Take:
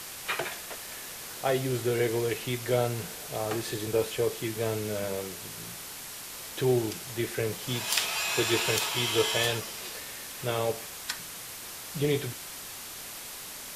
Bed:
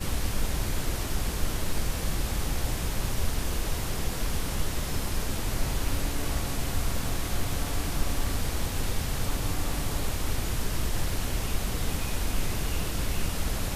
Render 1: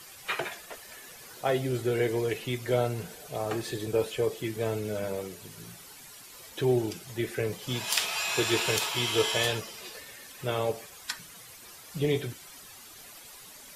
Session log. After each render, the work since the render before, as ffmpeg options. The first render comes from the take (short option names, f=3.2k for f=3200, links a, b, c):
-af "afftdn=nr=11:nf=-42"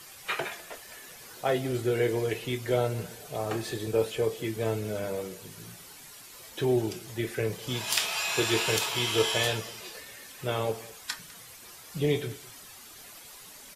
-filter_complex "[0:a]asplit=2[a][b];[b]adelay=27,volume=-11.5dB[c];[a][c]amix=inputs=2:normalize=0,aecho=1:1:201:0.0944"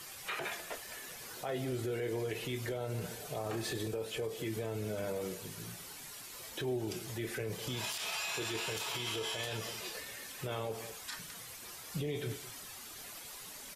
-af "acompressor=threshold=-29dB:ratio=6,alimiter=level_in=4.5dB:limit=-24dB:level=0:latency=1:release=41,volume=-4.5dB"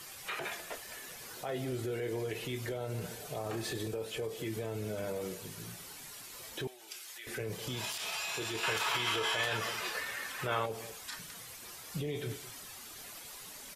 -filter_complex "[0:a]asettb=1/sr,asplit=3[a][b][c];[a]atrim=end=6.674[d];[b]atrim=start=6.67:end=7.27,asetpts=PTS-STARTPTS,afade=t=in:d=0.004:c=qsin,afade=t=out:st=0.596:d=0.004:c=qsin,highpass=1.4k[e];[c]atrim=start=7.266[f];[d][e]acrossfade=d=0.004:c1=hsin:c2=qsin[g];[g][f]acrossfade=d=0.004:c1=qsin:c2=hsin,asettb=1/sr,asplit=3[h][i][j];[h]atrim=end=8.634[k];[i]atrim=start=8.63:end=10.66,asetpts=PTS-STARTPTS,afade=t=in:d=0.004:c=qsin,afade=t=out:st=2.026:d=0.004:c=qsin,equalizer=f=1.4k:t=o:w=1.9:g=12[l];[j]atrim=start=10.656[m];[k][l]acrossfade=d=0.004:c1=hsin:c2=qsin[n];[n][m]acrossfade=d=0.004:c1=qsin:c2=hsin"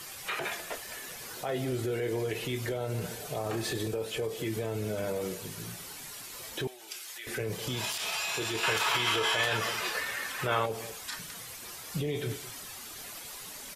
-af "volume=4.5dB"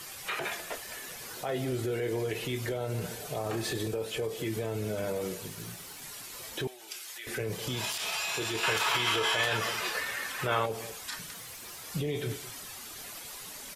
-filter_complex "[0:a]asettb=1/sr,asplit=3[a][b][c];[a]atrim=end=5.484[d];[b]atrim=start=5.48:end=6.02,asetpts=PTS-STARTPTS,afade=t=in:d=0.004:c=qsin,afade=t=out:st=0.536:d=0.004:c=qsin,aeval=exprs='sgn(val(0))*max(abs(val(0))-0.00133,0)':c=same[e];[c]atrim=start=6.016[f];[d][e]acrossfade=d=0.004:c1=hsin:c2=qsin[g];[g][f]acrossfade=d=0.004:c1=qsin:c2=hsin,asettb=1/sr,asplit=3[h][i][j];[h]atrim=end=11.334[k];[i]atrim=start=11.33:end=11.82,asetpts=PTS-STARTPTS,afade=t=in:d=0.004:c=qsin,afade=t=out:st=0.486:d=0.004:c=qsin,asoftclip=type=hard:threshold=-39.5dB[l];[j]atrim=start=11.816[m];[k][l]acrossfade=d=0.004:c1=hsin:c2=qsin[n];[n][m]acrossfade=d=0.004:c1=qsin:c2=hsin"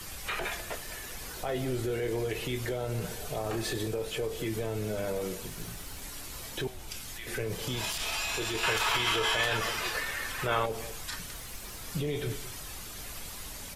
-filter_complex "[1:a]volume=-18dB[a];[0:a][a]amix=inputs=2:normalize=0"